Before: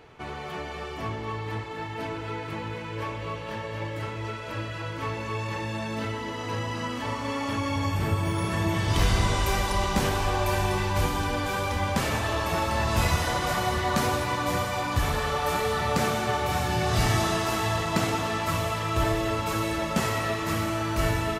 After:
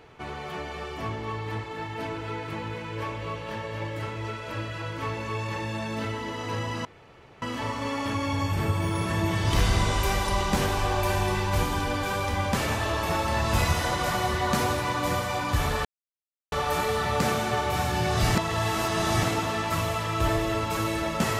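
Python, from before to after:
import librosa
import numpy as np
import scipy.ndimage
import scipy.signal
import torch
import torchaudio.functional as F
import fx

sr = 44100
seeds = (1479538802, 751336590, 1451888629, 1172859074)

y = fx.edit(x, sr, fx.insert_room_tone(at_s=6.85, length_s=0.57),
    fx.insert_silence(at_s=15.28, length_s=0.67),
    fx.reverse_span(start_s=17.11, length_s=0.88), tone=tone)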